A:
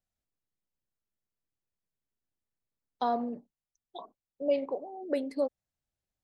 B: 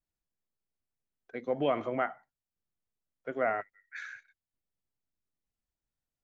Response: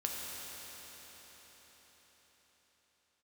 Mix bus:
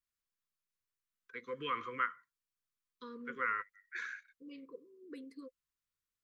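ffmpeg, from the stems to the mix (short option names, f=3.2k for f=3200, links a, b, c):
-filter_complex "[0:a]volume=-13.5dB[a];[1:a]lowshelf=f=550:t=q:w=1.5:g=-11.5,volume=-0.5dB[b];[a][b]amix=inputs=2:normalize=0,asuperstop=centerf=720:order=20:qfactor=1.5"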